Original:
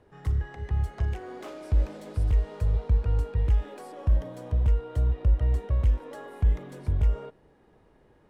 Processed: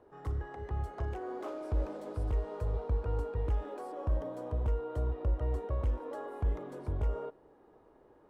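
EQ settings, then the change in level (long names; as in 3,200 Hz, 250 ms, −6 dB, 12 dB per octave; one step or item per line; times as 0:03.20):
flat-topped bell 610 Hz +10 dB 2.7 octaves
−9.0 dB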